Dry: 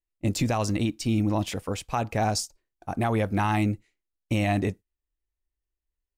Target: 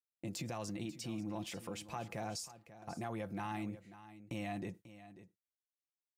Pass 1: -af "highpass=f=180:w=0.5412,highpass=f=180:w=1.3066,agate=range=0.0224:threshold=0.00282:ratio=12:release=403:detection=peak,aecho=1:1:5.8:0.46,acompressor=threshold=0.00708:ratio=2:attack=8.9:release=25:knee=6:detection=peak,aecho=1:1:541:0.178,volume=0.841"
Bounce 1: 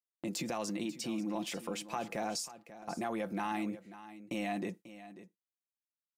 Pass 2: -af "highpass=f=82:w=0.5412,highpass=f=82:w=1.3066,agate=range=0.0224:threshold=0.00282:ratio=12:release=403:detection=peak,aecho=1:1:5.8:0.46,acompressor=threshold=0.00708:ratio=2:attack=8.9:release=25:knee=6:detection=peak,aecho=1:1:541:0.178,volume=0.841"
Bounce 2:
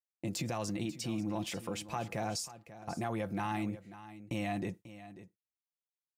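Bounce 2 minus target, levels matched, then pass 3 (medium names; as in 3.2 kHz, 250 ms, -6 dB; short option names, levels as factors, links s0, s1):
compression: peak gain reduction -5.5 dB
-af "highpass=f=82:w=0.5412,highpass=f=82:w=1.3066,agate=range=0.0224:threshold=0.00282:ratio=12:release=403:detection=peak,aecho=1:1:5.8:0.46,acompressor=threshold=0.002:ratio=2:attack=8.9:release=25:knee=6:detection=peak,aecho=1:1:541:0.178,volume=0.841"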